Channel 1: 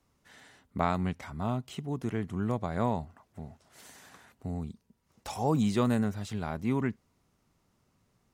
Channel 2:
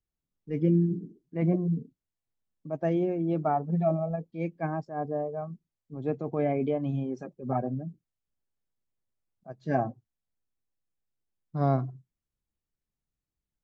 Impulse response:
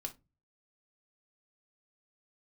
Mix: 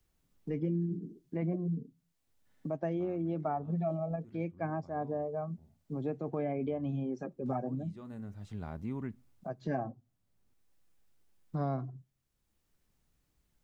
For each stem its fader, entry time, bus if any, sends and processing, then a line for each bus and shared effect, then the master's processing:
-9.5 dB, 2.20 s, send -16 dB, tilt -2 dB/oct; auto duck -22 dB, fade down 0.25 s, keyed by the second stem
+1.0 dB, 0.00 s, send -18 dB, three-band squash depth 40%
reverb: on, pre-delay 3 ms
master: compressor 2:1, threshold -37 dBFS, peak gain reduction 10 dB

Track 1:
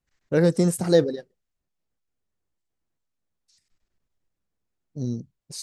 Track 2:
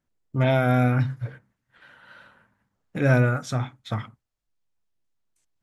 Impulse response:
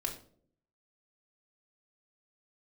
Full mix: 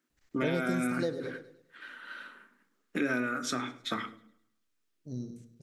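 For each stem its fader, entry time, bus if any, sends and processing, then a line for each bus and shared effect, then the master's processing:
+3.0 dB, 0.10 s, send -22.5 dB, echo send -23 dB, auto duck -17 dB, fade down 1.90 s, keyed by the second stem
+1.5 dB, 0.00 s, send -6 dB, echo send -21 dB, HPF 240 Hz 24 dB/oct; band shelf 710 Hz -9.5 dB 1.1 oct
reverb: on, RT60 0.55 s, pre-delay 3 ms
echo: feedback echo 0.104 s, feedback 41%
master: compressor 4:1, threshold -29 dBFS, peak gain reduction 13 dB

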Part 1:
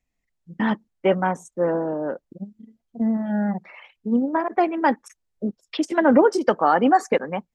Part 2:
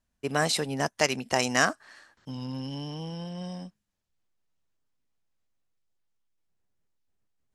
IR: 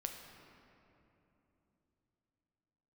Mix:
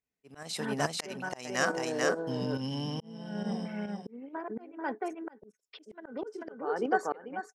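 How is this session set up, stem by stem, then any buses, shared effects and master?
-9.5 dB, 0.00 s, no send, echo send -4.5 dB, small resonant body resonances 430/1500 Hz, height 14 dB, ringing for 75 ms
+1.5 dB, 0.00 s, no send, echo send -10.5 dB, gate with hold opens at -52 dBFS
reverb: off
echo: echo 0.439 s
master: HPF 96 Hz; auto swell 0.702 s; pump 140 bpm, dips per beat 1, -8 dB, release 89 ms

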